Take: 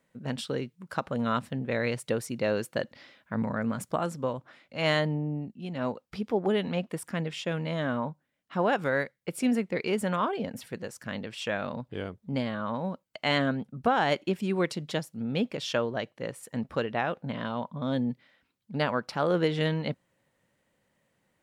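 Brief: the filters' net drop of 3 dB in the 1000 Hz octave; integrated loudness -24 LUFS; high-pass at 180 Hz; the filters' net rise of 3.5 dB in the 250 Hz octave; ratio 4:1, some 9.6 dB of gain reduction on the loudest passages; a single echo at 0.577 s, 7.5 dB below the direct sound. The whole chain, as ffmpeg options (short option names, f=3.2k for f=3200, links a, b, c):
-af "highpass=180,equalizer=f=250:t=o:g=6,equalizer=f=1k:t=o:g=-4.5,acompressor=threshold=-29dB:ratio=4,aecho=1:1:577:0.422,volume=10dB"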